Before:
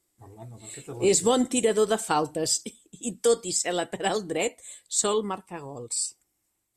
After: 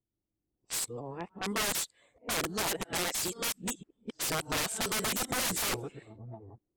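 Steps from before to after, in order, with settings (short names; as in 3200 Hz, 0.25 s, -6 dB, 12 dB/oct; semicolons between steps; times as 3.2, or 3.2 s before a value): whole clip reversed; wrapped overs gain 23.5 dB; low-pass opened by the level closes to 360 Hz, open at -27.5 dBFS; gain -2 dB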